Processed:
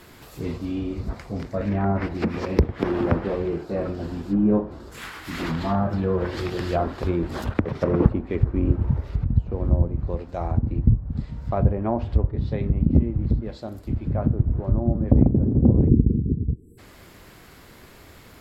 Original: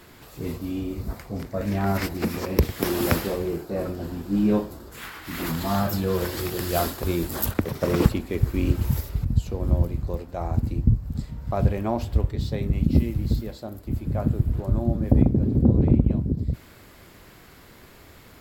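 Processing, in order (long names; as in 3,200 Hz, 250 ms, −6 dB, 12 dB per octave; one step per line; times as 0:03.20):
treble cut that deepens with the level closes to 1,100 Hz, closed at −19 dBFS
time-frequency box erased 0:15.88–0:16.78, 490–7,600 Hz
level +1.5 dB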